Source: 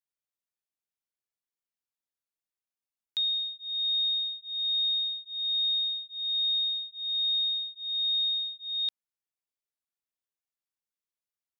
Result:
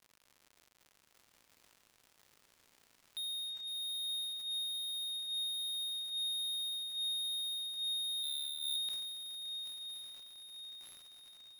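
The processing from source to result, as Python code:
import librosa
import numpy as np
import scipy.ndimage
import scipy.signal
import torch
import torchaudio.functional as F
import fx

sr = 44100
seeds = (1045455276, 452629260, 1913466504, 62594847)

p1 = fx.lowpass(x, sr, hz=3300.0, slope=6)
p2 = (np.mod(10.0 ** (37.0 / 20.0) * p1 + 1.0, 2.0) - 1.0) / 10.0 ** (37.0 / 20.0)
p3 = p1 + (p2 * librosa.db_to_amplitude(-10.0))
p4 = fx.dmg_crackle(p3, sr, seeds[0], per_s=150.0, level_db=-49.0)
p5 = 10.0 ** (-38.5 / 20.0) * np.tanh(p4 / 10.0 ** (-38.5 / 20.0))
p6 = fx.echo_diffused(p5, sr, ms=1133, feedback_pct=45, wet_db=-6.5)
p7 = fx.resample_bad(p6, sr, factor=6, down='none', up='hold', at=(8.23, 8.76))
y = fx.sustainer(p7, sr, db_per_s=26.0)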